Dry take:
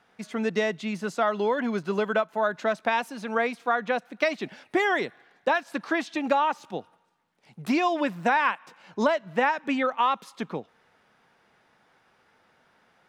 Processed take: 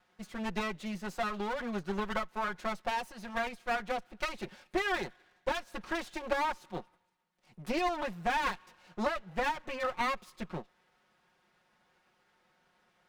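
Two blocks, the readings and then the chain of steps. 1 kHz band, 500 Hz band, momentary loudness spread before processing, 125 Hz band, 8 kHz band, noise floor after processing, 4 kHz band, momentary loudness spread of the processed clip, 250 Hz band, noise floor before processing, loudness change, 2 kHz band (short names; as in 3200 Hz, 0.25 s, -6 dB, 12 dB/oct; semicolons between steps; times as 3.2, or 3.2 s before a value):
-8.0 dB, -10.0 dB, 11 LU, -5.0 dB, -3.0 dB, -73 dBFS, -4.5 dB, 10 LU, -9.5 dB, -65 dBFS, -8.5 dB, -8.0 dB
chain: minimum comb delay 5.5 ms; gain -6 dB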